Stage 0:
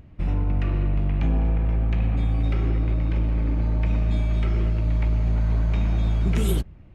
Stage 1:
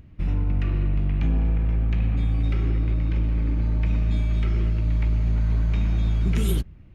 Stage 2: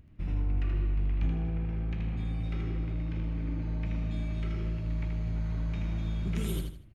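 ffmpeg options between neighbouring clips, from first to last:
ffmpeg -i in.wav -af "equalizer=frequency=700:width=0.96:gain=-6.5,bandreject=frequency=7900:width=14" out.wav
ffmpeg -i in.wav -af "aecho=1:1:79|158|237|316:0.596|0.179|0.0536|0.0161,volume=-8.5dB" out.wav

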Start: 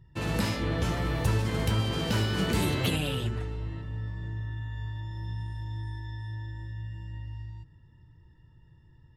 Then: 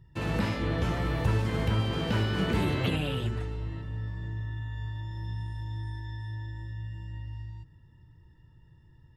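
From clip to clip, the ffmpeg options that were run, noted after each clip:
ffmpeg -i in.wav -filter_complex "[0:a]acrossover=split=3400[link_01][link_02];[link_02]acompressor=threshold=-50dB:ratio=4:attack=1:release=60[link_03];[link_01][link_03]amix=inputs=2:normalize=0" out.wav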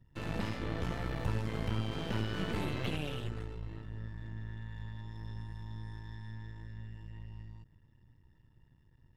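ffmpeg -i in.wav -af "aeval=exprs='if(lt(val(0),0),0.251*val(0),val(0))':channel_layout=same,volume=-4.5dB" out.wav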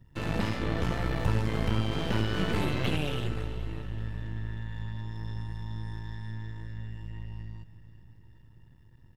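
ffmpeg -i in.wav -af "aecho=1:1:377|754|1131|1508|1885:0.158|0.0888|0.0497|0.0278|0.0156,volume=6.5dB" out.wav

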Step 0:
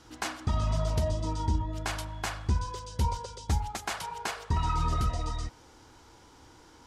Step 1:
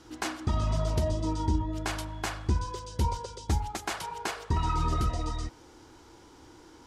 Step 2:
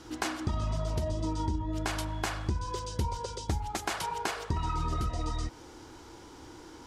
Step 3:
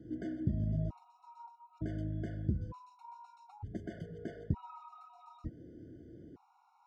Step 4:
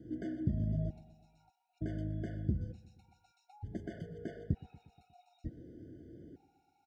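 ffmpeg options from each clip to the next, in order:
ffmpeg -i in.wav -af "equalizer=frequency=340:width=2.2:gain=7" out.wav
ffmpeg -i in.wav -af "acompressor=threshold=-32dB:ratio=6,volume=4dB" out.wav
ffmpeg -i in.wav -af "asoftclip=type=tanh:threshold=-21dB,bandpass=frequency=170:width_type=q:width=1.5:csg=0,afftfilt=real='re*gt(sin(2*PI*0.55*pts/sr)*(1-2*mod(floor(b*sr/1024/730),2)),0)':imag='im*gt(sin(2*PI*0.55*pts/sr)*(1-2*mod(floor(b*sr/1024/730),2)),0)':win_size=1024:overlap=0.75,volume=6dB" out.wav
ffmpeg -i in.wav -af "asuperstop=centerf=1100:order=12:qfactor=1.8,aecho=1:1:119|238|357|476|595:0.112|0.0651|0.0377|0.0219|0.0127" out.wav

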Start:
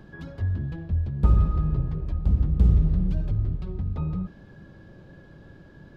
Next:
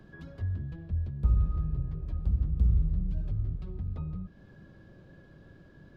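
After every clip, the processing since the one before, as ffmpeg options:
ffmpeg -i in.wav -filter_complex "[0:a]bandreject=frequency=860:width=12,acrossover=split=140[link_01][link_02];[link_02]acompressor=threshold=-40dB:ratio=2.5[link_03];[link_01][link_03]amix=inputs=2:normalize=0,volume=-5.5dB" out.wav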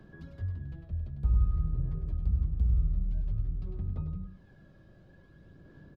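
ffmpeg -i in.wav -af "aecho=1:1:101:0.422,flanger=delay=0:depth=1.6:regen=65:speed=0.52:shape=sinusoidal" out.wav

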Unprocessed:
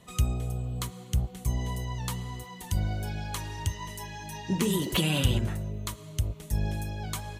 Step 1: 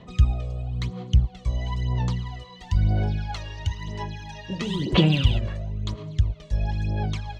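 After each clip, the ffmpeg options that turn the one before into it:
ffmpeg -i in.wav -af "lowpass=frequency=5000:width=0.5412,lowpass=frequency=5000:width=1.3066,equalizer=frequency=1400:width_type=o:width=0.77:gain=-2.5,aphaser=in_gain=1:out_gain=1:delay=1.8:decay=0.69:speed=1:type=sinusoidal" out.wav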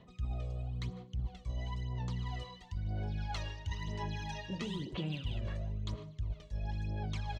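ffmpeg -i in.wav -af "areverse,acompressor=threshold=-32dB:ratio=12,areverse,aecho=1:1:151:0.0841,volume=-2dB" out.wav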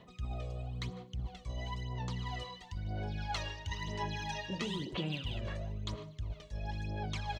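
ffmpeg -i in.wav -af "lowshelf=frequency=230:gain=-7.5,volume=4.5dB" out.wav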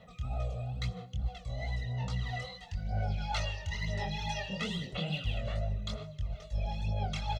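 ffmpeg -i in.wav -af "aecho=1:1:1.5:0.86,flanger=delay=17.5:depth=7.8:speed=2.3,volume=3dB" out.wav

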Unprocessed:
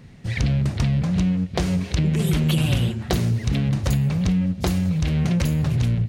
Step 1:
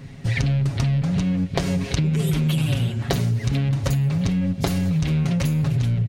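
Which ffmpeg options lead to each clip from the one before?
ffmpeg -i in.wav -af "aecho=1:1:7.3:0.6,acompressor=threshold=-23dB:ratio=6,volume=4.5dB" out.wav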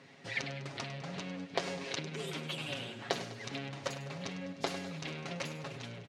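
ffmpeg -i in.wav -af "highpass=420,lowpass=6100,aecho=1:1:101|202|303|404|505|606:0.224|0.13|0.0753|0.0437|0.0253|0.0147,volume=-7dB" out.wav

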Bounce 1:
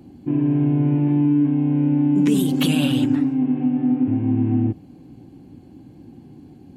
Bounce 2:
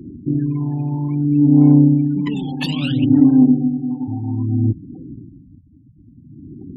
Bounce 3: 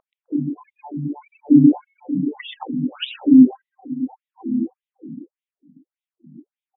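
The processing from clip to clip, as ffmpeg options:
ffmpeg -i in.wav -af "aphaser=in_gain=1:out_gain=1:delay=1.2:decay=0.76:speed=0.6:type=sinusoidal,adynamicsmooth=sensitivity=3.5:basefreq=2400,afftfilt=real='re*gte(hypot(re,im),0.0316)':imag='im*gte(hypot(re,im),0.0316)':win_size=1024:overlap=0.75,volume=-2.5dB" out.wav
ffmpeg -i in.wav -filter_complex "[0:a]highshelf=frequency=2000:gain=9,asplit=2[link_01][link_02];[link_02]aecho=0:1:129|258|387|516:0.596|0.179|0.0536|0.0161[link_03];[link_01][link_03]amix=inputs=2:normalize=0,afftfilt=real='re*between(b*sr/1024,200*pow(2800/200,0.5+0.5*sin(2*PI*1.7*pts/sr))/1.41,200*pow(2800/200,0.5+0.5*sin(2*PI*1.7*pts/sr))*1.41)':imag='im*between(b*sr/1024,200*pow(2800/200,0.5+0.5*sin(2*PI*1.7*pts/sr))/1.41,200*pow(2800/200,0.5+0.5*sin(2*PI*1.7*pts/sr))*1.41)':win_size=1024:overlap=0.75,volume=1.5dB" out.wav

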